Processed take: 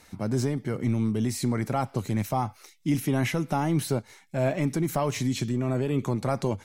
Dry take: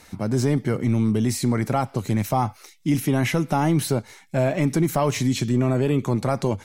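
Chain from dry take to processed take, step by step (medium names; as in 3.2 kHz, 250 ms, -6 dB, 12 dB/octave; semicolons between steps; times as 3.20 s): random flutter of the level, depth 50%; trim -2.5 dB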